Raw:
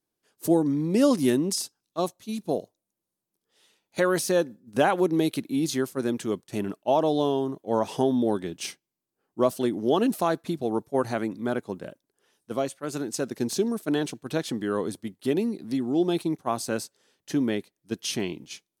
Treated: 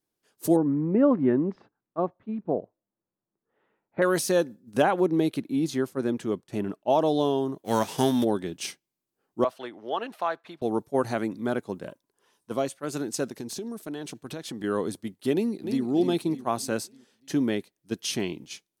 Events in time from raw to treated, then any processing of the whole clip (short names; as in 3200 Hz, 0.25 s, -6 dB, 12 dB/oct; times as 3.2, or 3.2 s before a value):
0.56–4.02 LPF 1700 Hz 24 dB/oct
4.82–6.9 high shelf 3100 Hz -9 dB
7.64–8.23 spectral whitening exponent 0.6
9.44–10.62 three-band isolator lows -20 dB, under 600 Hz, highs -21 dB, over 3400 Hz
11.87–12.54 bell 1000 Hz +11 dB 0.25 oct
13.29–14.64 compressor 4:1, threshold -33 dBFS
15.33–15.84 echo throw 0.3 s, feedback 45%, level -7.5 dB